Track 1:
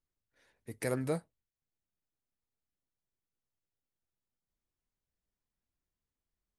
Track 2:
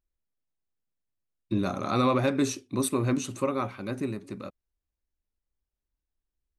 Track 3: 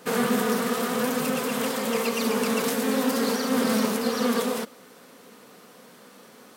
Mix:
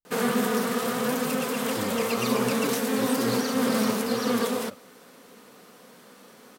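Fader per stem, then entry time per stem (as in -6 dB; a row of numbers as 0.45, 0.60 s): -9.0, -7.5, -1.0 dB; 0.00, 0.25, 0.05 s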